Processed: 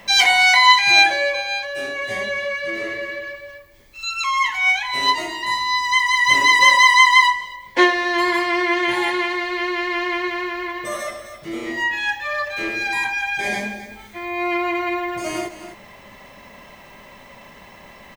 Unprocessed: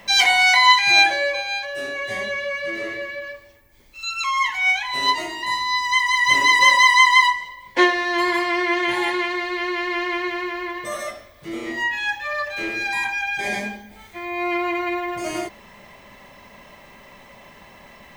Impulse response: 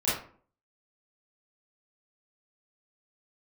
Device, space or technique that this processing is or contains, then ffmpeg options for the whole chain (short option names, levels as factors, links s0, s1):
ducked delay: -filter_complex "[0:a]asplit=3[s0][s1][s2];[s1]adelay=258,volume=0.447[s3];[s2]apad=whole_len=812307[s4];[s3][s4]sidechaincompress=threshold=0.0316:ratio=8:attack=46:release=1080[s5];[s0][s5]amix=inputs=2:normalize=0,volume=1.19"